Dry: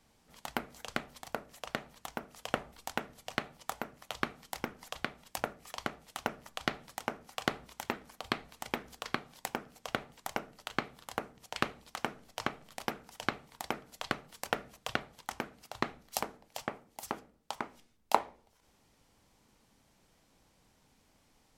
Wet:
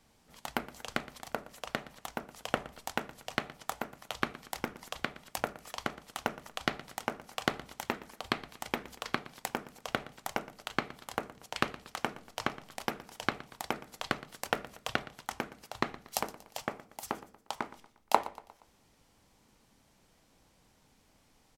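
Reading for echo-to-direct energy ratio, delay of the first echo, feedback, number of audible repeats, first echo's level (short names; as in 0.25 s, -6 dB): -17.0 dB, 0.118 s, 45%, 3, -18.0 dB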